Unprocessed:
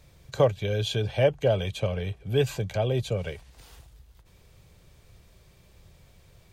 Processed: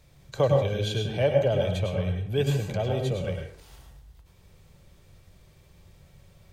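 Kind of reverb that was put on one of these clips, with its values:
dense smooth reverb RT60 0.52 s, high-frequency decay 0.5×, pre-delay 90 ms, DRR 2 dB
level −2.5 dB

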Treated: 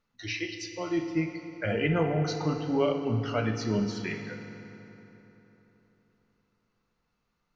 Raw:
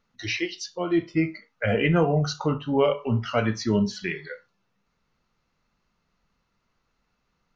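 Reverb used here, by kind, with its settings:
feedback delay network reverb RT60 3.7 s, high-frequency decay 0.65×, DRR 5.5 dB
level −6 dB

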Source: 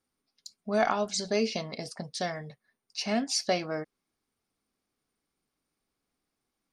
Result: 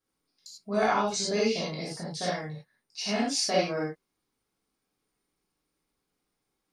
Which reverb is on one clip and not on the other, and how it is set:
reverb whose tail is shaped and stops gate 120 ms flat, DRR −7 dB
level −5.5 dB

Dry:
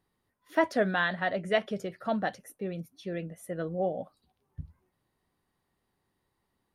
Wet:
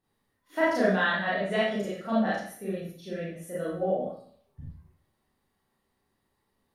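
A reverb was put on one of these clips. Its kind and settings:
four-comb reverb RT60 0.57 s, combs from 28 ms, DRR −9 dB
level −6.5 dB

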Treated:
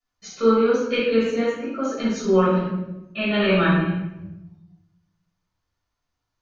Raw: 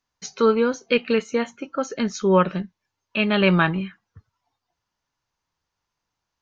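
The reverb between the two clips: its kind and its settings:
rectangular room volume 350 cubic metres, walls mixed, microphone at 6.2 metres
level −14.5 dB

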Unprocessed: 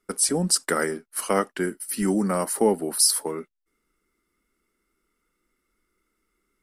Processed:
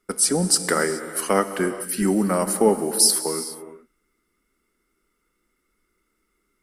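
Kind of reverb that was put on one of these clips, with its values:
reverb whose tail is shaped and stops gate 450 ms flat, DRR 10 dB
level +2.5 dB

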